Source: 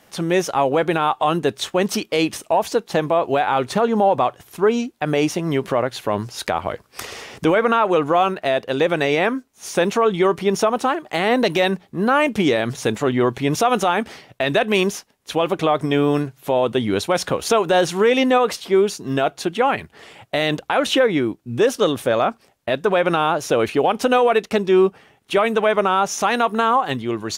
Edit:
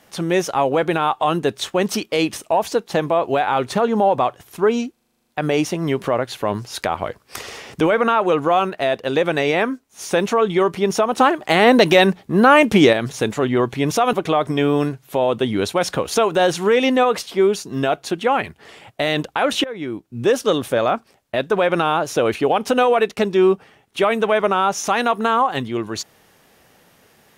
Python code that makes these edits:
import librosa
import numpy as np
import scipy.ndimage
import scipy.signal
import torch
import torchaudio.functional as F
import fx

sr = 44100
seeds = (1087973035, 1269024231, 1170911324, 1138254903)

y = fx.edit(x, sr, fx.stutter(start_s=4.92, slice_s=0.04, count=10),
    fx.clip_gain(start_s=10.82, length_s=1.75, db=5.5),
    fx.cut(start_s=13.77, length_s=1.7),
    fx.fade_in_from(start_s=20.98, length_s=0.61, floor_db=-19.5), tone=tone)